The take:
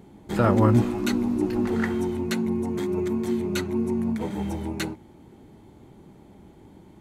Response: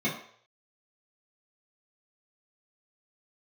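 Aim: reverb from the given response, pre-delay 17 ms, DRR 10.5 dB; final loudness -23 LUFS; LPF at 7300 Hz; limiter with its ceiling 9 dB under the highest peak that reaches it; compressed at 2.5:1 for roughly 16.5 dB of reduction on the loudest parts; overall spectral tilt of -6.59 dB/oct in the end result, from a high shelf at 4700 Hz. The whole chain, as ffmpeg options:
-filter_complex "[0:a]lowpass=7.3k,highshelf=f=4.7k:g=-5.5,acompressor=threshold=-40dB:ratio=2.5,alimiter=level_in=6dB:limit=-24dB:level=0:latency=1,volume=-6dB,asplit=2[a][b];[1:a]atrim=start_sample=2205,adelay=17[c];[b][c]afir=irnorm=-1:irlink=0,volume=-20.5dB[d];[a][d]amix=inputs=2:normalize=0,volume=17dB"

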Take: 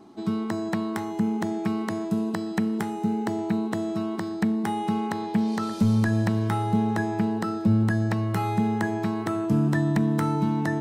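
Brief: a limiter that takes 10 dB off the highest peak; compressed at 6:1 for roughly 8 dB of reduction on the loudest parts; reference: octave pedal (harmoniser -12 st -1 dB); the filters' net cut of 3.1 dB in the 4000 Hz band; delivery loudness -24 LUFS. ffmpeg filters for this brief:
-filter_complex "[0:a]equalizer=f=4k:t=o:g=-4,acompressor=threshold=-26dB:ratio=6,alimiter=level_in=0.5dB:limit=-24dB:level=0:latency=1,volume=-0.5dB,asplit=2[a][b];[b]asetrate=22050,aresample=44100,atempo=2,volume=-1dB[c];[a][c]amix=inputs=2:normalize=0,volume=6.5dB"

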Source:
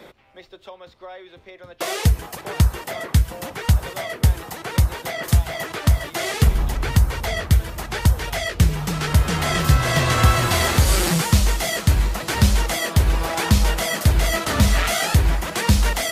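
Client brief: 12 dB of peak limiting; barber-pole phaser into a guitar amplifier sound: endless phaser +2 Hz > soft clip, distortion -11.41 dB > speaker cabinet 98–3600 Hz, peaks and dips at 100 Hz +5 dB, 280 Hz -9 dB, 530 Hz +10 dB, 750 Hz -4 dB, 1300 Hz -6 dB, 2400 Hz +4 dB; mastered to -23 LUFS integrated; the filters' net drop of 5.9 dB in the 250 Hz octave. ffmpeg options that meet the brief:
-filter_complex "[0:a]equalizer=f=250:t=o:g=-8,alimiter=limit=-16dB:level=0:latency=1,asplit=2[a][b];[b]afreqshift=2[c];[a][c]amix=inputs=2:normalize=1,asoftclip=threshold=-26dB,highpass=98,equalizer=f=100:t=q:w=4:g=5,equalizer=f=280:t=q:w=4:g=-9,equalizer=f=530:t=q:w=4:g=10,equalizer=f=750:t=q:w=4:g=-4,equalizer=f=1.3k:t=q:w=4:g=-6,equalizer=f=2.4k:t=q:w=4:g=4,lowpass=f=3.6k:w=0.5412,lowpass=f=3.6k:w=1.3066,volume=11dB"

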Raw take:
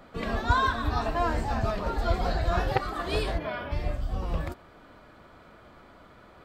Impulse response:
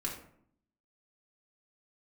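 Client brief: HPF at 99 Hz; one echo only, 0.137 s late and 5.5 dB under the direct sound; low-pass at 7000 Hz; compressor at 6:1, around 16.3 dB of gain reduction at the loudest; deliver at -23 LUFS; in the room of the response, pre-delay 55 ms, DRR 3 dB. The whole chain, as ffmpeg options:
-filter_complex "[0:a]highpass=99,lowpass=7k,acompressor=threshold=-40dB:ratio=6,aecho=1:1:137:0.531,asplit=2[a][b];[1:a]atrim=start_sample=2205,adelay=55[c];[b][c]afir=irnorm=-1:irlink=0,volume=-5.5dB[d];[a][d]amix=inputs=2:normalize=0,volume=18dB"

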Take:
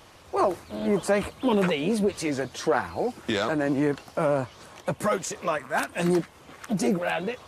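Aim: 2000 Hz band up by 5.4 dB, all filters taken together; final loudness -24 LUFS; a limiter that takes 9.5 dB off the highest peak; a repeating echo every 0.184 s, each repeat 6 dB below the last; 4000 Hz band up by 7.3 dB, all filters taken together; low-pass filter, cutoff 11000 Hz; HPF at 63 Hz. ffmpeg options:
-af "highpass=63,lowpass=11k,equalizer=f=2k:t=o:g=5.5,equalizer=f=4k:t=o:g=7.5,alimiter=limit=-17dB:level=0:latency=1,aecho=1:1:184|368|552|736|920|1104:0.501|0.251|0.125|0.0626|0.0313|0.0157,volume=3dB"

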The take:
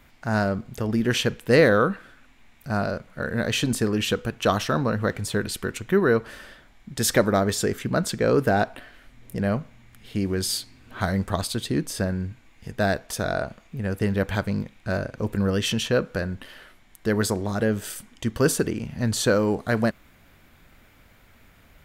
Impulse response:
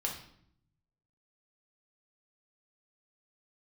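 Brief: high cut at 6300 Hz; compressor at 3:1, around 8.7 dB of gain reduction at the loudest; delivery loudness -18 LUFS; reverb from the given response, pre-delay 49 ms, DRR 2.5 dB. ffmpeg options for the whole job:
-filter_complex "[0:a]lowpass=6.3k,acompressor=threshold=-24dB:ratio=3,asplit=2[a][b];[1:a]atrim=start_sample=2205,adelay=49[c];[b][c]afir=irnorm=-1:irlink=0,volume=-5.5dB[d];[a][d]amix=inputs=2:normalize=0,volume=9.5dB"

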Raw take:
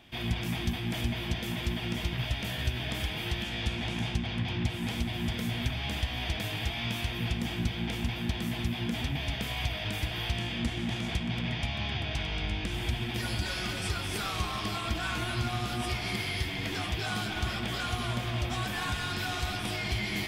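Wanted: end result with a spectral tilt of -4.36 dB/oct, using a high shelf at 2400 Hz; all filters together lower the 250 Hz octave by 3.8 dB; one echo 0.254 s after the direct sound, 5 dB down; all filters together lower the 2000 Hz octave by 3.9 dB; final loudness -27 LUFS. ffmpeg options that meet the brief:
-af "equalizer=f=250:t=o:g=-5,equalizer=f=2k:t=o:g=-8,highshelf=f=2.4k:g=5,aecho=1:1:254:0.562,volume=5dB"

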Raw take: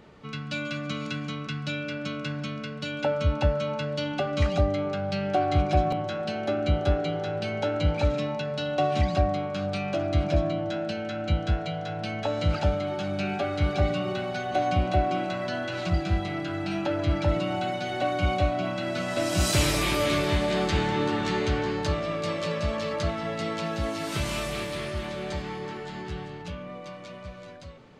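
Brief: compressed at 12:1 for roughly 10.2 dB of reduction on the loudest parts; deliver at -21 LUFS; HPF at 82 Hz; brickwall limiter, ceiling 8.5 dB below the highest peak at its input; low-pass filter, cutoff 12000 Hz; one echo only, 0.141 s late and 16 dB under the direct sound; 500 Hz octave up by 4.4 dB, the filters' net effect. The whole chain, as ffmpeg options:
-af "highpass=82,lowpass=12k,equalizer=f=500:t=o:g=5.5,acompressor=threshold=-27dB:ratio=12,alimiter=limit=-24dB:level=0:latency=1,aecho=1:1:141:0.158,volume=11.5dB"

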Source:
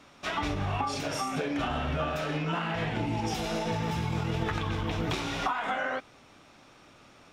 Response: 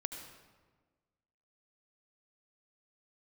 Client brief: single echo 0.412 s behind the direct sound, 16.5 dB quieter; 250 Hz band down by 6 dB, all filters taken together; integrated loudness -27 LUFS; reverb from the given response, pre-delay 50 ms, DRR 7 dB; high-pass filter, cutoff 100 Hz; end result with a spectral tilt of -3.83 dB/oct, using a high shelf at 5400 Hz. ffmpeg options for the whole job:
-filter_complex "[0:a]highpass=100,equalizer=f=250:t=o:g=-8.5,highshelf=f=5.4k:g=7,aecho=1:1:412:0.15,asplit=2[a][b];[1:a]atrim=start_sample=2205,adelay=50[c];[b][c]afir=irnorm=-1:irlink=0,volume=-6.5dB[d];[a][d]amix=inputs=2:normalize=0,volume=4dB"

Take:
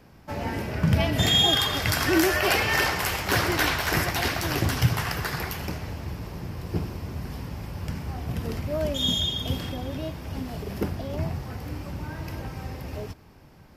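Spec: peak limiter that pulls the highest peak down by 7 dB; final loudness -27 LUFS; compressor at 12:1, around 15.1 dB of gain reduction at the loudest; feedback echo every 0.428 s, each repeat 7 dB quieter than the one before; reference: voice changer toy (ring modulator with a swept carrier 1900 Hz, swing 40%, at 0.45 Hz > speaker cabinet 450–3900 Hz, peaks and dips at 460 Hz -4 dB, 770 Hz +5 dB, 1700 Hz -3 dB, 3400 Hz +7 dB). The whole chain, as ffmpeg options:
-af "acompressor=threshold=-31dB:ratio=12,alimiter=level_in=1.5dB:limit=-24dB:level=0:latency=1,volume=-1.5dB,aecho=1:1:428|856|1284|1712|2140:0.447|0.201|0.0905|0.0407|0.0183,aeval=exprs='val(0)*sin(2*PI*1900*n/s+1900*0.4/0.45*sin(2*PI*0.45*n/s))':c=same,highpass=450,equalizer=f=460:t=q:w=4:g=-4,equalizer=f=770:t=q:w=4:g=5,equalizer=f=1.7k:t=q:w=4:g=-3,equalizer=f=3.4k:t=q:w=4:g=7,lowpass=f=3.9k:w=0.5412,lowpass=f=3.9k:w=1.3066,volume=9dB"

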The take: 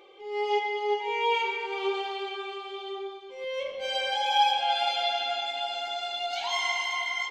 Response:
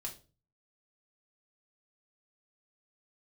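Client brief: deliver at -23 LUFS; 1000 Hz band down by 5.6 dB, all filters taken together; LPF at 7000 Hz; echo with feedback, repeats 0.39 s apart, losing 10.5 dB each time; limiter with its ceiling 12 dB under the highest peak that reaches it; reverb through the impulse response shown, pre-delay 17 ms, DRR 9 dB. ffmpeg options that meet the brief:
-filter_complex "[0:a]lowpass=7k,equalizer=f=1k:t=o:g=-7.5,alimiter=level_in=4dB:limit=-24dB:level=0:latency=1,volume=-4dB,aecho=1:1:390|780|1170:0.299|0.0896|0.0269,asplit=2[a][b];[1:a]atrim=start_sample=2205,adelay=17[c];[b][c]afir=irnorm=-1:irlink=0,volume=-7dB[d];[a][d]amix=inputs=2:normalize=0,volume=11dB"

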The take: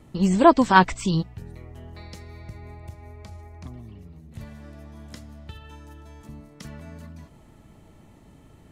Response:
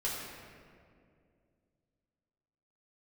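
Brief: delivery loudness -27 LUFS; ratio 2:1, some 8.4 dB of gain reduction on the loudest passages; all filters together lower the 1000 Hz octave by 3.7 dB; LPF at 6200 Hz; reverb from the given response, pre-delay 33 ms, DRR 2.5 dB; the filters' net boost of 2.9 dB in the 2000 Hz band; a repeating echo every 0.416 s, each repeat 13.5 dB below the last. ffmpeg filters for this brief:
-filter_complex "[0:a]lowpass=6.2k,equalizer=f=1k:t=o:g=-6,equalizer=f=2k:t=o:g=7.5,acompressor=threshold=-25dB:ratio=2,aecho=1:1:416|832:0.211|0.0444,asplit=2[a][b];[1:a]atrim=start_sample=2205,adelay=33[c];[b][c]afir=irnorm=-1:irlink=0,volume=-7.5dB[d];[a][d]amix=inputs=2:normalize=0,volume=3.5dB"

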